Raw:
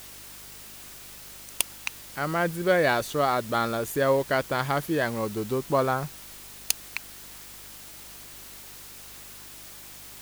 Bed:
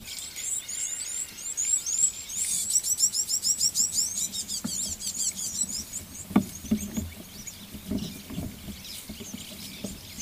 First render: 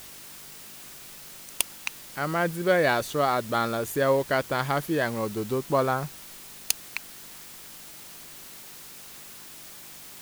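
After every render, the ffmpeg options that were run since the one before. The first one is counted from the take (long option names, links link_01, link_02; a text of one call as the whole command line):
ffmpeg -i in.wav -af "bandreject=frequency=50:width_type=h:width=4,bandreject=frequency=100:width_type=h:width=4" out.wav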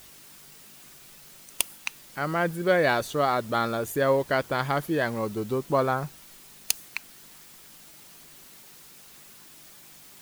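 ffmpeg -i in.wav -af "afftdn=noise_reduction=6:noise_floor=-45" out.wav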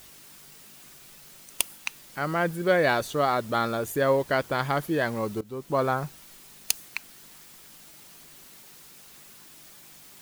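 ffmpeg -i in.wav -filter_complex "[0:a]asplit=2[link_01][link_02];[link_01]atrim=end=5.41,asetpts=PTS-STARTPTS,afade=type=out:start_time=5.406:duration=0.004:curve=hsin:silence=0.105925[link_03];[link_02]atrim=start=5.41,asetpts=PTS-STARTPTS,afade=type=in:duration=0.45:silence=0.105925[link_04];[link_03][link_04]concat=n=2:v=0:a=1" out.wav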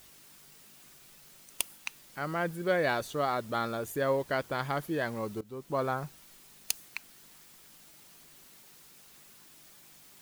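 ffmpeg -i in.wav -af "volume=-6dB" out.wav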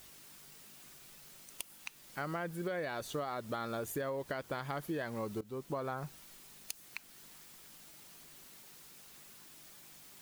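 ffmpeg -i in.wav -af "alimiter=limit=-23dB:level=0:latency=1:release=222,acompressor=threshold=-34dB:ratio=6" out.wav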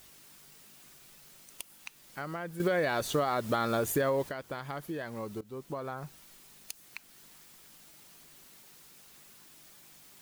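ffmpeg -i in.wav -filter_complex "[0:a]asplit=3[link_01][link_02][link_03];[link_01]atrim=end=2.602[link_04];[link_02]atrim=start=2.598:end=4.292,asetpts=PTS-STARTPTS,volume=9dB[link_05];[link_03]atrim=start=4.288[link_06];[link_04][link_05]acrossfade=duration=0.004:curve1=hsin:curve2=hsin[link_07];[link_07][link_06]acrossfade=duration=0.004:curve1=hsin:curve2=hsin" out.wav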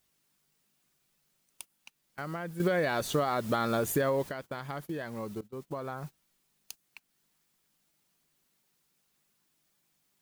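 ffmpeg -i in.wav -af "agate=range=-19dB:threshold=-43dB:ratio=16:detection=peak,equalizer=frequency=180:width_type=o:width=0.81:gain=3.5" out.wav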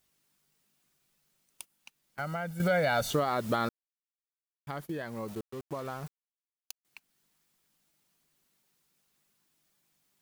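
ffmpeg -i in.wav -filter_complex "[0:a]asettb=1/sr,asplit=3[link_01][link_02][link_03];[link_01]atrim=end=2.194[link_04];[link_02]atrim=start=2.19:end=3.11,asetpts=PTS-STARTPTS,afade=type=in:duration=0.004:curve=qsin,afade=type=out:start_time=0.916:duration=0.004:curve=qsin,aecho=1:1:1.4:0.74,atrim=end_sample=40572[link_05];[link_03]atrim=start=3.106[link_06];[link_04][link_05]acrossfade=duration=0.004:curve1=hsin:curve2=qsin[link_07];[link_07][link_06]acrossfade=duration=0.004:curve1=qsin:curve2=hsin,asettb=1/sr,asplit=3[link_08][link_09][link_10];[link_08]atrim=end=5.284[link_11];[link_09]atrim=start=5.28:end=6.85,asetpts=PTS-STARTPTS,afade=type=in:duration=0.004:curve=qsin,afade=type=out:start_time=1.566:duration=0.004:curve=qsin,aeval=exprs='val(0)*gte(abs(val(0)),0.00562)':channel_layout=same[link_12];[link_10]atrim=start=6.846[link_13];[link_11][link_12]acrossfade=duration=0.004:curve1=hsin:curve2=qsin[link_14];[link_14][link_13]acrossfade=duration=0.004:curve1=qsin:curve2=hsin,asplit=3[link_15][link_16][link_17];[link_15]atrim=end=3.69,asetpts=PTS-STARTPTS,afade=type=out:start_time=3.686:duration=0.004:curve=hsin[link_18];[link_16]atrim=start=3.69:end=4.67,asetpts=PTS-STARTPTS,volume=0[link_19];[link_17]atrim=start=4.67,asetpts=PTS-STARTPTS,afade=type=in:duration=0.004:curve=hsin[link_20];[link_18][link_19][link_20]concat=n=3:v=0:a=1" out.wav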